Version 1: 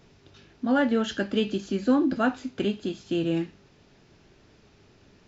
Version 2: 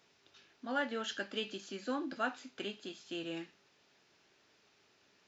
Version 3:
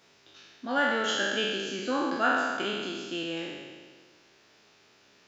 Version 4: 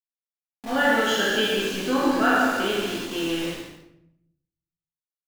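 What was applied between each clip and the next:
high-pass filter 1,100 Hz 6 dB per octave; level −5 dB
peak hold with a decay on every bin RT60 1.65 s; level +5.5 dB
centre clipping without the shift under −35.5 dBFS; on a send: single-tap delay 143 ms −10 dB; on the sum: rectangular room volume 180 cubic metres, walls mixed, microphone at 1.5 metres

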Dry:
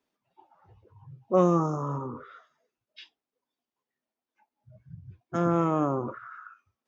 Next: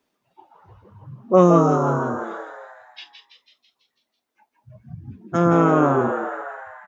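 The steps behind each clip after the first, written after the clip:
echo with shifted repeats 165 ms, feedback 57%, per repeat +99 Hz, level −7 dB
level +8 dB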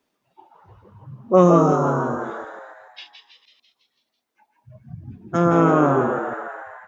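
delay that plays each chunk backwards 144 ms, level −12 dB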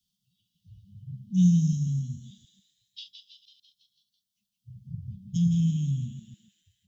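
Chebyshev band-stop filter 200–3,100 Hz, order 5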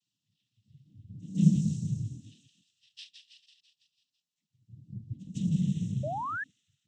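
backwards echo 155 ms −19 dB
cochlear-implant simulation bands 12
sound drawn into the spectrogram rise, 0:06.03–0:06.44, 560–1,800 Hz −30 dBFS
level −4 dB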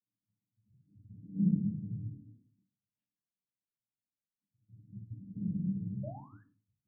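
transistor ladder low-pass 570 Hz, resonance 30%
convolution reverb RT60 0.30 s, pre-delay 3 ms, DRR 3.5 dB
level −1.5 dB

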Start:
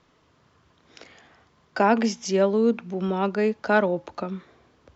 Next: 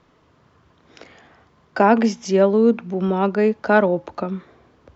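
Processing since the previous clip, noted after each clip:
high-shelf EQ 2,500 Hz −7.5 dB
level +5.5 dB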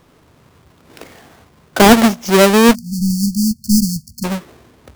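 each half-wave held at its own peak
time-frequency box erased 0:02.74–0:04.24, 240–4,300 Hz
level +2.5 dB

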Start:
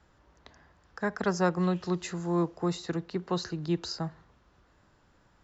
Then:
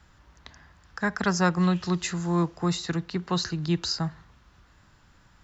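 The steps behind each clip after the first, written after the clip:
parametric band 470 Hz −10 dB 1.9 octaves
level +8.5 dB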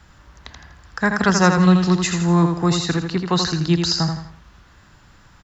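repeating echo 82 ms, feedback 36%, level −6 dB
level +7.5 dB

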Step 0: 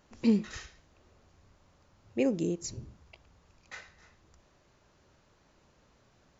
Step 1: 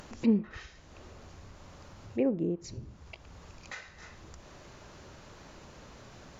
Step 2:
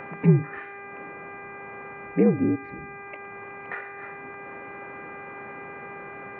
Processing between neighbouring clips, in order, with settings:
treble cut that deepens with the level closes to 1,400 Hz, closed at −27 dBFS; upward compression, threshold −37 dBFS
single-sideband voice off tune −62 Hz 210–2,300 Hz; hum with harmonics 400 Hz, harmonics 6, −50 dBFS −1 dB per octave; level +9 dB

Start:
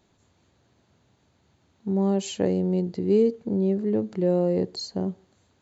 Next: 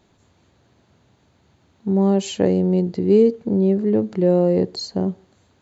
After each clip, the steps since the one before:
high-shelf EQ 6,600 Hz −5.5 dB
level +6 dB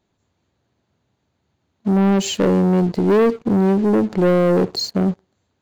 leveller curve on the samples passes 3
level −5 dB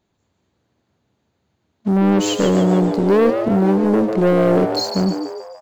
echo with shifted repeats 146 ms, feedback 51%, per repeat +110 Hz, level −7.5 dB

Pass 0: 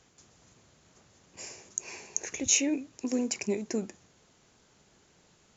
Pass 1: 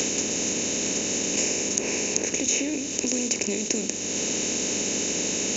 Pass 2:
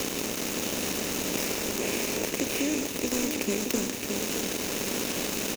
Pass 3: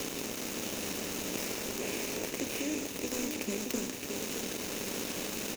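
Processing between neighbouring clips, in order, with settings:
compressor on every frequency bin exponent 0.4; high-shelf EQ 4,800 Hz +5 dB; multiband upward and downward compressor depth 100%
gap after every zero crossing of 0.076 ms; single-tap delay 619 ms −6 dB
flanger 0.5 Hz, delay 6.7 ms, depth 3.8 ms, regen −69%; level −2 dB

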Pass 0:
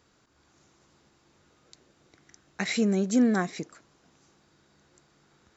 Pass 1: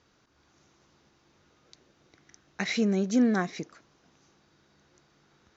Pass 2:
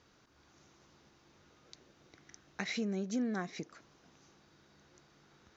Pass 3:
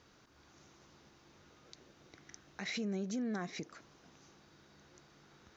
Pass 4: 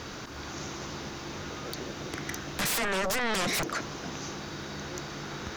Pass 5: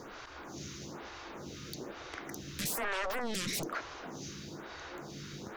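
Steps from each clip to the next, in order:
elliptic low-pass filter 6,400 Hz, stop band 40 dB
downward compressor 2 to 1, threshold −41 dBFS, peak gain reduction 12 dB
brickwall limiter −32.5 dBFS, peak gain reduction 11.5 dB; level +2 dB
sine wavefolder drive 16 dB, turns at −30 dBFS; level +4.5 dB
phaser with staggered stages 1.1 Hz; level −3.5 dB

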